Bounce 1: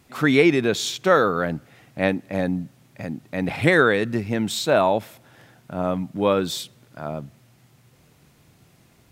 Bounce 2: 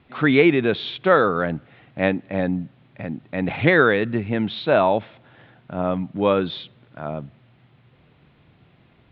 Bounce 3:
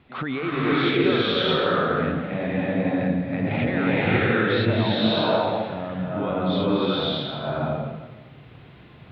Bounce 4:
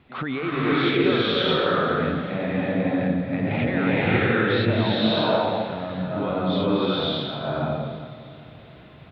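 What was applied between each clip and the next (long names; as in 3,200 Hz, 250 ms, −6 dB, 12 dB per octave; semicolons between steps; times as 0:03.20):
Butterworth low-pass 3,700 Hz 48 dB per octave; level +1 dB
downward compressor, threshold −23 dBFS, peak gain reduction 12.5 dB; brickwall limiter −19.5 dBFS, peak gain reduction 8 dB; slow-attack reverb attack 600 ms, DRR −8.5 dB
repeating echo 393 ms, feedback 55%, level −17.5 dB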